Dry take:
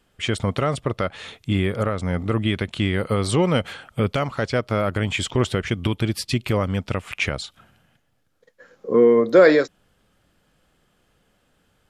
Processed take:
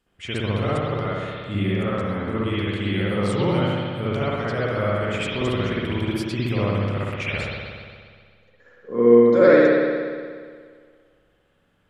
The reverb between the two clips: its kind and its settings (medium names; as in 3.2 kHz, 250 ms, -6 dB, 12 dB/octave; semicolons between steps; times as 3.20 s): spring tank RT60 1.9 s, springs 59 ms, chirp 75 ms, DRR -9 dB; trim -10 dB